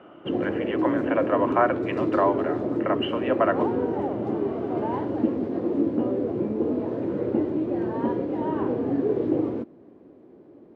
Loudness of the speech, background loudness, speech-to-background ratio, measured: -27.0 LUFS, -26.5 LUFS, -0.5 dB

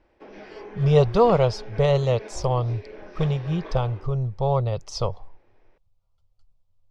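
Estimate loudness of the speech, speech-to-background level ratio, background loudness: -23.5 LUFS, 18.0 dB, -41.5 LUFS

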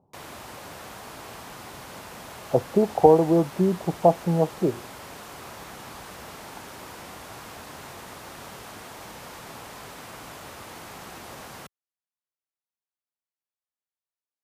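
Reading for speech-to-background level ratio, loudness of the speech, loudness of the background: 19.0 dB, -22.0 LUFS, -41.0 LUFS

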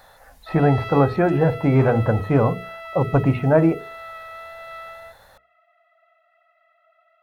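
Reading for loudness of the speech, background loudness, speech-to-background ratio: -19.5 LUFS, -36.0 LUFS, 16.5 dB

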